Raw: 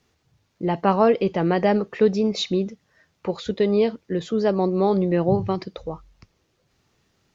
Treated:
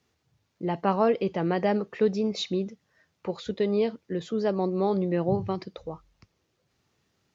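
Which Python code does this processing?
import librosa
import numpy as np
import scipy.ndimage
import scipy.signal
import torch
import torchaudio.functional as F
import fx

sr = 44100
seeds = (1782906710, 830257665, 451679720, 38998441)

y = scipy.signal.sosfilt(scipy.signal.butter(2, 61.0, 'highpass', fs=sr, output='sos'), x)
y = y * 10.0 ** (-5.5 / 20.0)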